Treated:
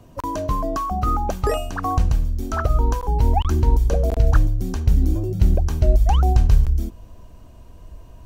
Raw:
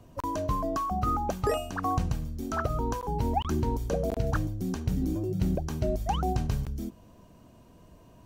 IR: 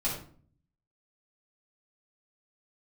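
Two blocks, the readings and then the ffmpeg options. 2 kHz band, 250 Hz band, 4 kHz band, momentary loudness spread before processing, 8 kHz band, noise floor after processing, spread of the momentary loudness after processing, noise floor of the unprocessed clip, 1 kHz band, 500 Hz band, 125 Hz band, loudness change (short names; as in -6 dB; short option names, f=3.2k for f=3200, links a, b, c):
+5.5 dB, +3.0 dB, +5.5 dB, 4 LU, +5.5 dB, -44 dBFS, 7 LU, -55 dBFS, +5.5 dB, +5.0 dB, +11.0 dB, +9.5 dB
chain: -af "asubboost=boost=7.5:cutoff=63,volume=5.5dB"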